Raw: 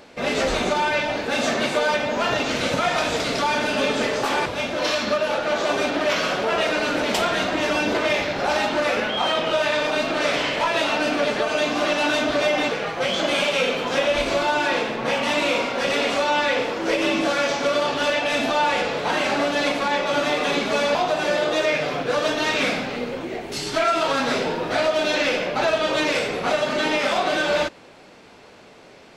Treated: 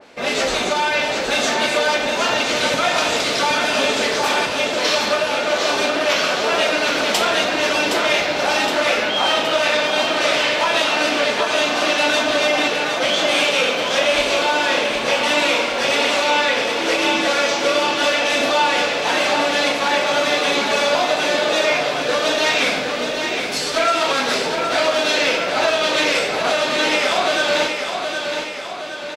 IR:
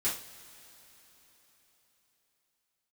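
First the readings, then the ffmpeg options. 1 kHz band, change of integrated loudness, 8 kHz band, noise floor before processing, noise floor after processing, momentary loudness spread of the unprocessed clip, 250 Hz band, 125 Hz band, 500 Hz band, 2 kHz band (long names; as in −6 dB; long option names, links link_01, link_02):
+3.5 dB, +4.0 dB, +7.5 dB, −47 dBFS, −24 dBFS, 3 LU, +0.5 dB, −2.5 dB, +2.5 dB, +5.0 dB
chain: -filter_complex "[0:a]lowshelf=frequency=210:gain=-9.5,asplit=2[link_01][link_02];[link_02]aecho=0:1:767|1534|2301|3068|3835|4602|5369:0.501|0.276|0.152|0.0834|0.0459|0.0252|0.0139[link_03];[link_01][link_03]amix=inputs=2:normalize=0,adynamicequalizer=threshold=0.02:dfrequency=2500:dqfactor=0.7:tfrequency=2500:tqfactor=0.7:attack=5:release=100:ratio=0.375:range=2:mode=boostabove:tftype=highshelf,volume=2.5dB"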